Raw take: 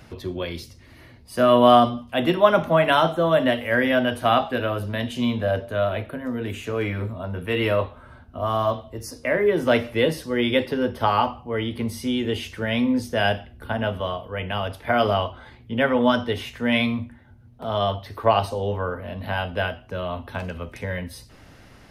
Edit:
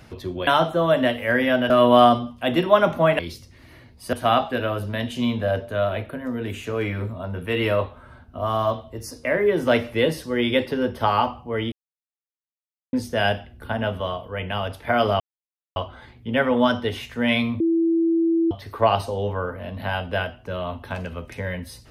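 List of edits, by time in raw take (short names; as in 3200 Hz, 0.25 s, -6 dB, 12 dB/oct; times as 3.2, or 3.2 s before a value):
0.47–1.41 swap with 2.9–4.13
11.72–12.93 mute
15.2 insert silence 0.56 s
17.04–17.95 bleep 331 Hz -16.5 dBFS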